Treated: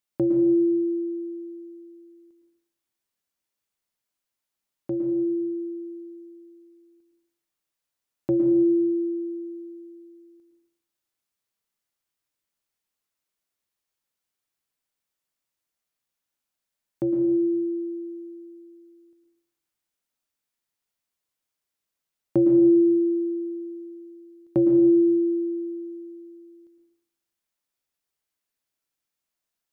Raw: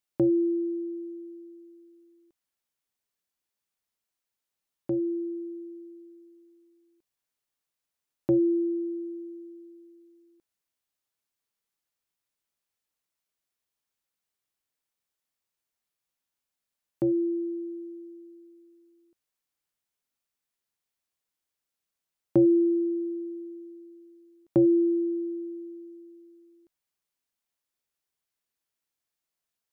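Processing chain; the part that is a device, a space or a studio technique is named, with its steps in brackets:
bathroom (convolution reverb RT60 0.90 s, pre-delay 105 ms, DRR 3.5 dB)

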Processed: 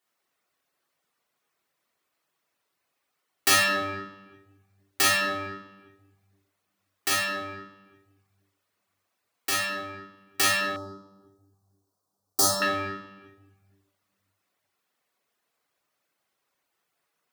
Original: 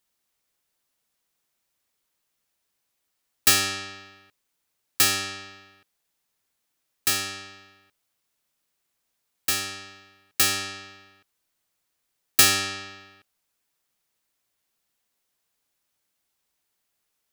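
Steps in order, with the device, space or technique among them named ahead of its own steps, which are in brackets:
tilt shelving filter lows +8.5 dB, about 1,100 Hz
rectangular room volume 830 cubic metres, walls mixed, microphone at 3.4 metres
filter by subtraction (in parallel: low-pass filter 1,500 Hz 12 dB per octave + polarity inversion)
on the sum: reverb reduction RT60 0.59 s
0:10.76–0:12.62: Chebyshev band-stop filter 1,000–5,200 Hz, order 2

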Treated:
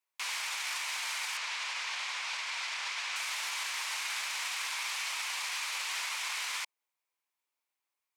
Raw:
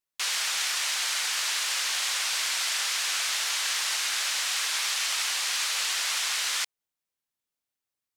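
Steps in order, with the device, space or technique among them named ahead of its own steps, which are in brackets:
laptop speaker (high-pass filter 310 Hz 24 dB per octave; parametric band 970 Hz +10 dB 0.59 octaves; parametric band 2,300 Hz +8 dB 0.48 octaves; brickwall limiter −25 dBFS, peak gain reduction 11.5 dB)
0:01.37–0:03.16: low-pass filter 5,900 Hz 12 dB per octave
level −2 dB

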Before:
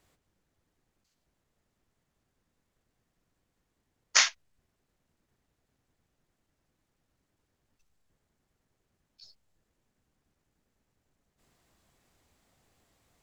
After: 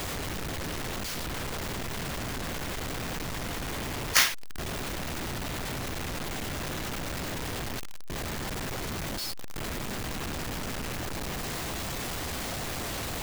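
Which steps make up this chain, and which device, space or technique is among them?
early CD player with a faulty converter (converter with a step at zero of −27.5 dBFS; converter with an unsteady clock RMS 0.023 ms)

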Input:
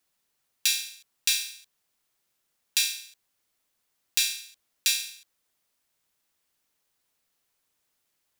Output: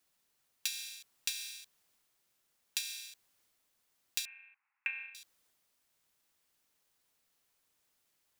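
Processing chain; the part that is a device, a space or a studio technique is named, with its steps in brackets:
0:04.25–0:05.15: Chebyshev band-pass filter 800–2,600 Hz, order 5
drum-bus smash (transient designer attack +7 dB, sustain +3 dB; downward compressor 8 to 1, threshold −31 dBFS, peak gain reduction 17.5 dB; soft clipping −11.5 dBFS, distortion −16 dB)
level −1 dB

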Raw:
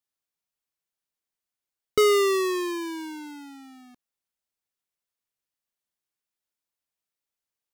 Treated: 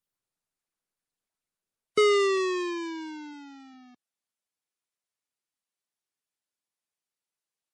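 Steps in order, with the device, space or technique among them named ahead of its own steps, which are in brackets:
0:03.33–0:03.74: high-pass filter 130 Hz 6 dB per octave
dynamic equaliser 2,300 Hz, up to +5 dB, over −46 dBFS, Q 4.7
noise-suppressed video call (high-pass filter 120 Hz 12 dB per octave; gate on every frequency bin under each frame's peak −30 dB strong; level −2 dB; Opus 32 kbit/s 48,000 Hz)

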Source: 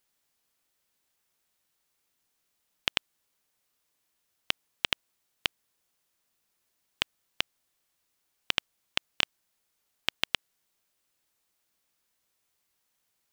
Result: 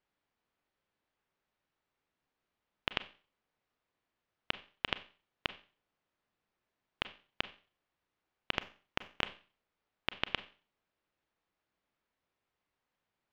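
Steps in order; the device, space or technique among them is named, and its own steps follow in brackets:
phone in a pocket (low-pass filter 3,400 Hz 12 dB per octave; high-shelf EQ 2,400 Hz −9 dB)
0:08.54–0:09.23: dynamic equaliser 4,600 Hz, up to −6 dB, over −54 dBFS, Q 0.72
four-comb reverb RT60 0.38 s, combs from 30 ms, DRR 13 dB

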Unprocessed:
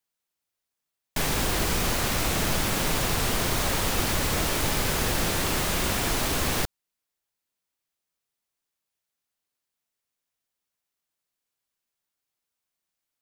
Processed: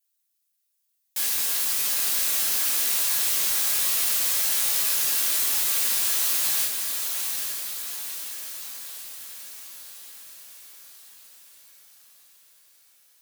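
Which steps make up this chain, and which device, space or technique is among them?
first difference
feedback delay with all-pass diffusion 846 ms, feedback 54%, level −5 dB
rectangular room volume 200 cubic metres, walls furnished, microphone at 2.3 metres
parallel compression (in parallel at −5 dB: downward compressor, threshold −43 dBFS, peak gain reduction 20 dB)

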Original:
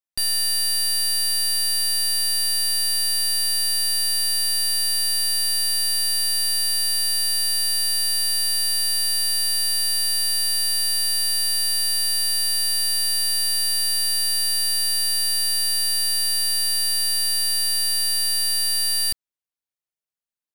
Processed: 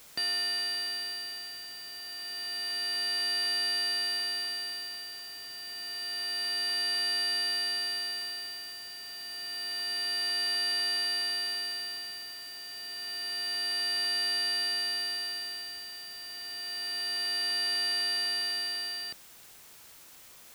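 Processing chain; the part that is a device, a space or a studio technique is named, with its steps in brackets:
shortwave radio (band-pass filter 250–3,000 Hz; amplitude tremolo 0.28 Hz, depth 80%; white noise bed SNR 19 dB)
level +3 dB

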